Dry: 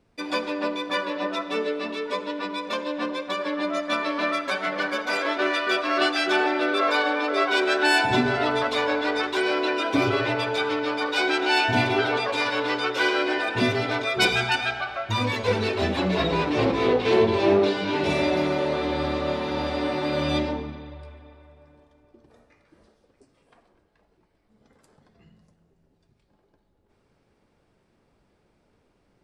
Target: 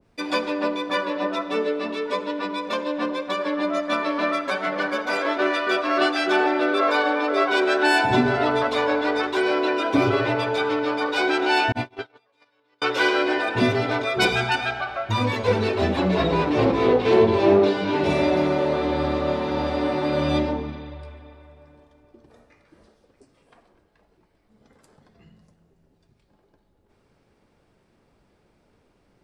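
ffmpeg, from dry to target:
-filter_complex "[0:a]asettb=1/sr,asplit=3[a][b][c];[a]atrim=end=11.724[d];[b]atrim=start=11.72:end=12.82,asetpts=PTS-STARTPTS,afade=t=in:d=0.004:c=qsin,afade=t=out:st=1.096:d=0.004:c=qsin,agate=range=-44dB:threshold=-18dB:ratio=16:detection=peak[e];[c]atrim=start=12.816[f];[d][e]acrossfade=d=0.004:c1=hsin:c2=qsin[g];[g][f]acrossfade=d=0.004:c1=qsin:c2=hsin,adynamicequalizer=threshold=0.0141:dfrequency=1600:dqfactor=0.7:tfrequency=1600:tqfactor=0.7:attack=5:release=100:ratio=0.375:range=2.5:mode=cutabove:tftype=highshelf,volume=3dB"

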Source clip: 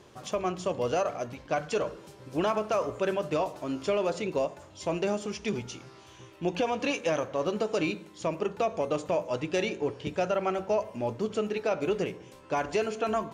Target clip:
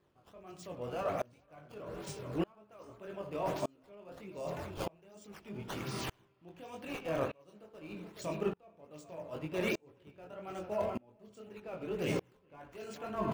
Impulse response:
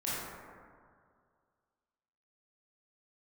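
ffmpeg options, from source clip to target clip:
-filter_complex "[0:a]bass=f=250:g=4,treble=f=4k:g=10,areverse,acompressor=threshold=-40dB:ratio=16,areverse,flanger=delay=19.5:depth=5.2:speed=1.9,acrossover=split=3300[a][b];[a]aecho=1:1:78|426:0.178|0.237[c];[b]acrusher=samples=13:mix=1:aa=0.000001:lfo=1:lforange=20.8:lforate=1.3[d];[c][d]amix=inputs=2:normalize=0,aeval=exprs='val(0)*pow(10,-33*if(lt(mod(-0.82*n/s,1),2*abs(-0.82)/1000),1-mod(-0.82*n/s,1)/(2*abs(-0.82)/1000),(mod(-0.82*n/s,1)-2*abs(-0.82)/1000)/(1-2*abs(-0.82)/1000))/20)':c=same,volume=16dB"

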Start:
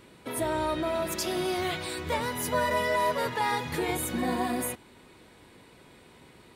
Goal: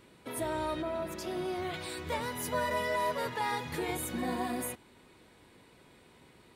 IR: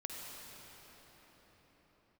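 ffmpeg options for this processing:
-filter_complex "[0:a]asettb=1/sr,asplit=3[a][b][c];[a]atrim=end=0.824[d];[b]atrim=start=0.82:end=1.74,asetpts=PTS-STARTPTS,afade=t=in:d=0.004:c=qsin,afade=t=out:st=0.916:d=0.004:c=qsin,highshelf=f=2.3k:g=-9[e];[c]atrim=start=1.736[f];[d][e]acrossfade=d=0.004:c1=hsin:c2=qsin[g];[g][f]acrossfade=d=0.004:c1=qsin:c2=hsin,volume=-5dB"

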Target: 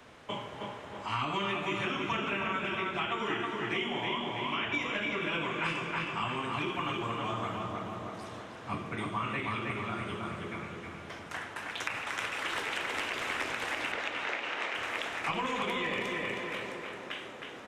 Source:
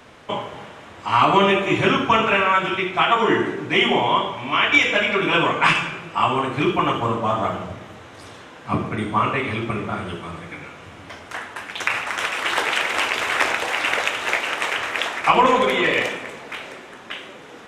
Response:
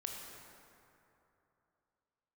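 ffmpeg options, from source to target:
-filter_complex "[0:a]asettb=1/sr,asplit=3[a][b][c];[a]atrim=end=13.924[d];[b]atrim=start=13.92:end=14.75,asetpts=PTS-STARTPTS,afade=t=in:d=0.004:c=qsin,afade=t=out:st=0.826:d=0.004:c=qsin,highpass=250,lowpass=4.8k[e];[c]atrim=start=14.746[f];[d][e]acrossfade=d=0.004:c1=hsin:c2=qsin[g];[g][f]acrossfade=d=0.004:c1=qsin:c2=hsin,asplit=2[h][i];[i]adelay=316,lowpass=f=3.2k:p=1,volume=-4dB,asplit=2[j][k];[k]adelay=316,lowpass=f=3.2k:p=1,volume=0.45,asplit=2[l][m];[m]adelay=316,lowpass=f=3.2k:p=1,volume=0.45,asplit=2[n][o];[o]adelay=316,lowpass=f=3.2k:p=1,volume=0.45,asplit=2[p][q];[q]adelay=316,lowpass=f=3.2k:p=1,volume=0.45,asplit=2[r][s];[s]adelay=316,lowpass=f=3.2k:p=1,volume=0.45[t];[h][j][l][n][p][r][t]amix=inputs=7:normalize=0,acrossover=split=340|1400[u][v][w];[u]acompressor=threshold=-31dB:ratio=4[x];[v]acompressor=threshold=-33dB:ratio=4[y];[w]acompressor=threshold=-27dB:ratio=4[z];[x][y][z]amix=inputs=3:normalize=0,volume=-7.5dB"

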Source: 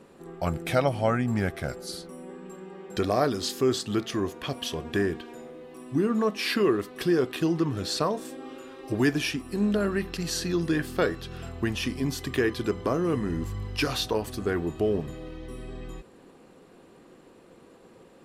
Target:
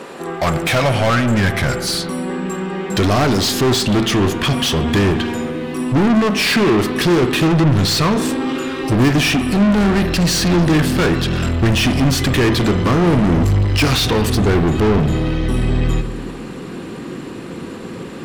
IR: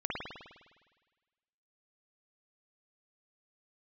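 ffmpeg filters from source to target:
-filter_complex "[0:a]asubboost=boost=10:cutoff=190,asplit=2[a][b];[b]highpass=f=720:p=1,volume=30dB,asoftclip=type=tanh:threshold=-10dB[c];[a][c]amix=inputs=2:normalize=0,lowpass=f=5.6k:p=1,volume=-6dB,asplit=2[d][e];[1:a]atrim=start_sample=2205[f];[e][f]afir=irnorm=-1:irlink=0,volume=-14dB[g];[d][g]amix=inputs=2:normalize=0"

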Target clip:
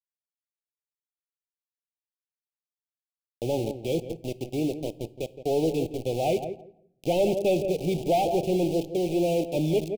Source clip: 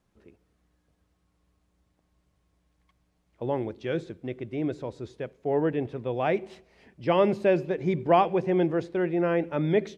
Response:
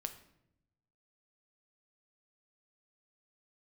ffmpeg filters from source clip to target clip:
-filter_complex "[0:a]acrossover=split=380|3000[a][b][c];[a]acompressor=threshold=-30dB:ratio=2[d];[d][b][c]amix=inputs=3:normalize=0,aeval=exprs='val(0)*gte(abs(val(0)),0.0211)':c=same,asplit=2[e][f];[f]adelay=167,lowpass=f=1.3k:p=1,volume=-10dB,asplit=2[g][h];[h]adelay=167,lowpass=f=1.3k:p=1,volume=0.18,asplit=2[i][j];[j]adelay=167,lowpass=f=1.3k:p=1,volume=0.18[k];[e][g][i][k]amix=inputs=4:normalize=0,asoftclip=type=tanh:threshold=-22dB,asplit=2[l][m];[1:a]atrim=start_sample=2205[n];[m][n]afir=irnorm=-1:irlink=0,volume=-2dB[o];[l][o]amix=inputs=2:normalize=0,aeval=exprs='0.178*(cos(1*acos(clip(val(0)/0.178,-1,1)))-cos(1*PI/2))+0.00631*(cos(7*acos(clip(val(0)/0.178,-1,1)))-cos(7*PI/2))':c=same,asuperstop=centerf=1400:order=12:qfactor=0.86"

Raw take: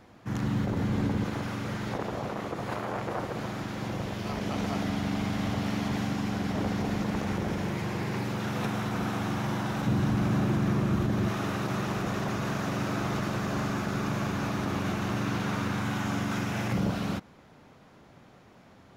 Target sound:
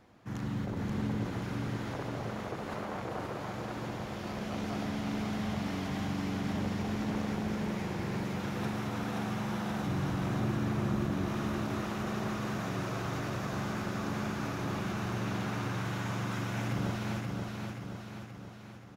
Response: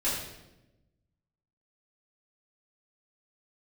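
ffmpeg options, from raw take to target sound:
-af "aecho=1:1:528|1056|1584|2112|2640|3168|3696|4224:0.668|0.374|0.21|0.117|0.0657|0.0368|0.0206|0.0115,volume=-6.5dB"

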